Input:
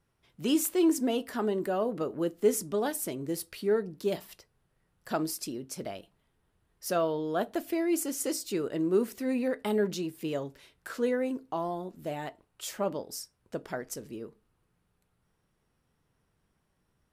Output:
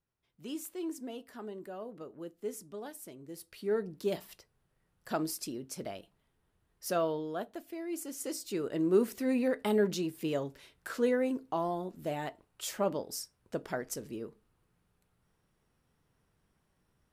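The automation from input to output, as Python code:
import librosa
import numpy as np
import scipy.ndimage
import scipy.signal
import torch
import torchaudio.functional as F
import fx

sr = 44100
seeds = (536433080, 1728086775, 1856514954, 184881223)

y = fx.gain(x, sr, db=fx.line((3.29, -13.5), (3.82, -2.5), (7.11, -2.5), (7.65, -12.5), (8.92, 0.0)))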